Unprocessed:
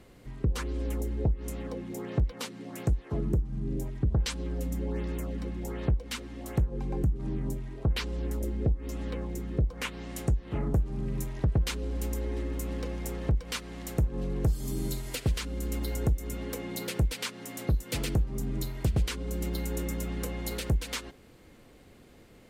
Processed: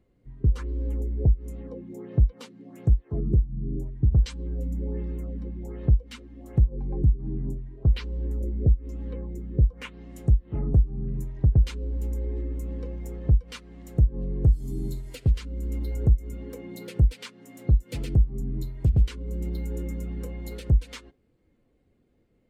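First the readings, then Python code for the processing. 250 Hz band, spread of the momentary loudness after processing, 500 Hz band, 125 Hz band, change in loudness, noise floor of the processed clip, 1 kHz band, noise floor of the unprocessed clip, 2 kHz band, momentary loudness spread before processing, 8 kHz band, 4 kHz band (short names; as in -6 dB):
+0.5 dB, 13 LU, -2.0 dB, +6.0 dB, +5.0 dB, -66 dBFS, -8.0 dB, -54 dBFS, -7.0 dB, 6 LU, under -10 dB, -7.0 dB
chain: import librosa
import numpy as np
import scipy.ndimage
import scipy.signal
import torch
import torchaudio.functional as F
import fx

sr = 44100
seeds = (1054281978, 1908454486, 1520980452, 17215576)

y = fx.spectral_expand(x, sr, expansion=1.5)
y = y * 10.0 ** (7.0 / 20.0)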